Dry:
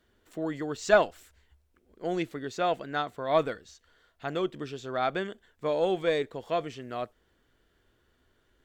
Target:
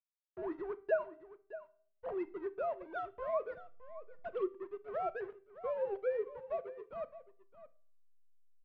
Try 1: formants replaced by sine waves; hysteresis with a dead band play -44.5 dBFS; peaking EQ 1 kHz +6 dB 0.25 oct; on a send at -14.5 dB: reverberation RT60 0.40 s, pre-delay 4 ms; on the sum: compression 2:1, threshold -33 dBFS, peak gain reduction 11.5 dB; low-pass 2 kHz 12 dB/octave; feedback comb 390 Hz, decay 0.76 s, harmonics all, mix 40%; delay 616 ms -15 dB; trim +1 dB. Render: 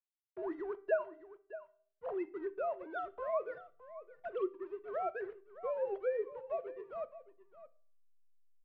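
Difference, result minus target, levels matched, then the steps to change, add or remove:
hysteresis with a dead band: distortion -6 dB
change: hysteresis with a dead band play -37.5 dBFS

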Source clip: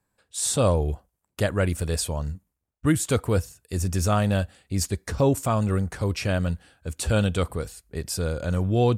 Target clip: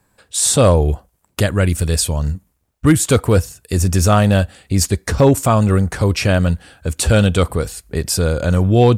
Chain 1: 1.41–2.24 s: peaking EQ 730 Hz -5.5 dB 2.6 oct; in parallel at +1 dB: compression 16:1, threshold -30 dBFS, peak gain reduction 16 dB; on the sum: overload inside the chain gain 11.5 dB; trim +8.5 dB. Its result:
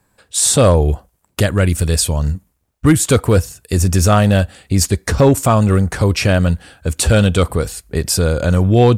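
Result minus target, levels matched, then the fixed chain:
compression: peak gain reduction -6.5 dB
1.41–2.24 s: peaking EQ 730 Hz -5.5 dB 2.6 oct; in parallel at +1 dB: compression 16:1, threshold -37 dBFS, peak gain reduction 22.5 dB; on the sum: overload inside the chain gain 11.5 dB; trim +8.5 dB

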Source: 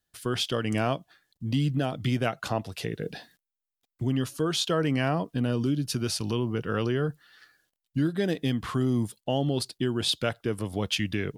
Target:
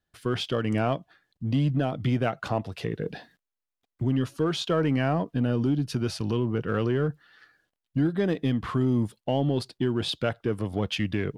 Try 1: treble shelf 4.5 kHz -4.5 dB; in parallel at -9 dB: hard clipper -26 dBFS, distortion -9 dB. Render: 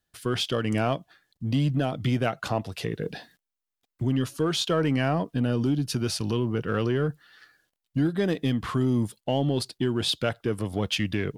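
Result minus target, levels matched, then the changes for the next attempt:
8 kHz band +7.0 dB
change: treble shelf 4.5 kHz -15.5 dB

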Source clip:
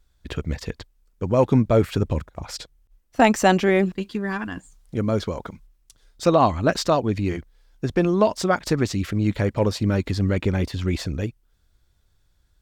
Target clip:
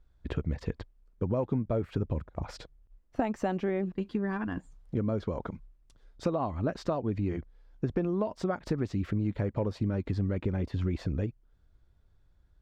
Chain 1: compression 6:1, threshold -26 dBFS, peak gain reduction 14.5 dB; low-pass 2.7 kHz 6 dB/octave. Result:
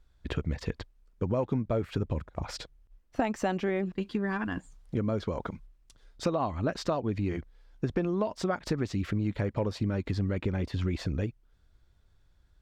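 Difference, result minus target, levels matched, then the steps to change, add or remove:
2 kHz band +4.0 dB
change: low-pass 970 Hz 6 dB/octave

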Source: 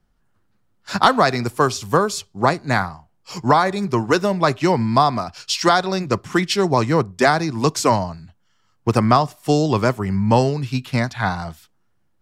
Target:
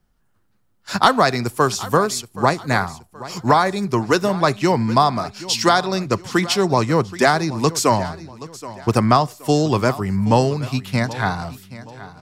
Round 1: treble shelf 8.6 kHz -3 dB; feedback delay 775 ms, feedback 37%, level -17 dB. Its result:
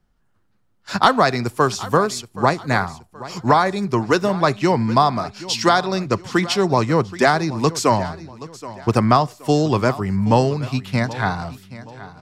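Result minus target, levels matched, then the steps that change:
8 kHz band -3.5 dB
change: treble shelf 8.6 kHz +7 dB

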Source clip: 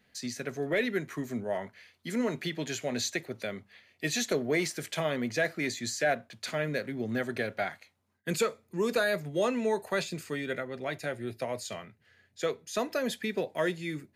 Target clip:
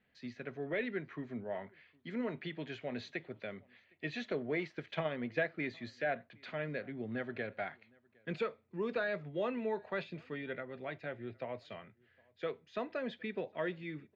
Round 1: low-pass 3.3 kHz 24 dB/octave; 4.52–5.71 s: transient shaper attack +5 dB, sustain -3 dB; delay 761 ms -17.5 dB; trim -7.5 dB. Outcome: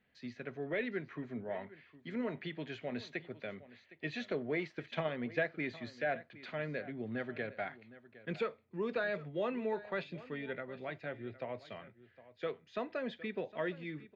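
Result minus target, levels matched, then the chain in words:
echo-to-direct +11 dB
low-pass 3.3 kHz 24 dB/octave; 4.52–5.71 s: transient shaper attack +5 dB, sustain -3 dB; delay 761 ms -28.5 dB; trim -7.5 dB

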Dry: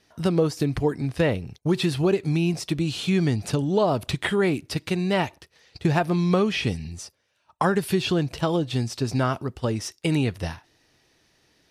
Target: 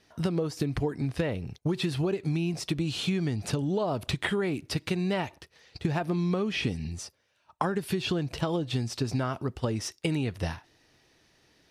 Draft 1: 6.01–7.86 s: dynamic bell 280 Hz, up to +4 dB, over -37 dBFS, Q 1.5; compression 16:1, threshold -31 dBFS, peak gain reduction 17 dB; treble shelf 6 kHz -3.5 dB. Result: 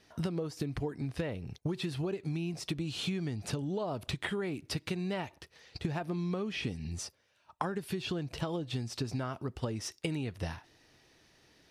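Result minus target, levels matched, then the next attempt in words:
compression: peak gain reduction +6.5 dB
6.01–7.86 s: dynamic bell 280 Hz, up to +4 dB, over -37 dBFS, Q 1.5; compression 16:1, threshold -24 dBFS, peak gain reduction 10.5 dB; treble shelf 6 kHz -3.5 dB

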